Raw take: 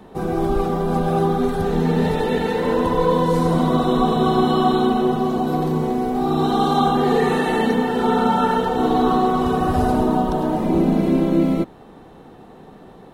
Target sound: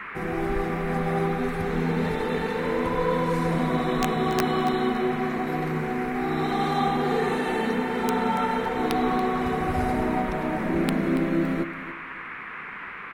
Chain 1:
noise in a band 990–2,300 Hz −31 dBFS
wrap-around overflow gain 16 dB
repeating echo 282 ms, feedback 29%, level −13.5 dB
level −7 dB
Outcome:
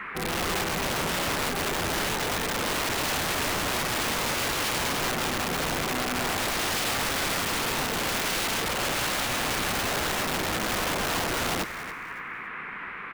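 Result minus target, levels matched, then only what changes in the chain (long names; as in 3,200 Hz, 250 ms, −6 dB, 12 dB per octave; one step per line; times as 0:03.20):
wrap-around overflow: distortion +39 dB
change: wrap-around overflow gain 6 dB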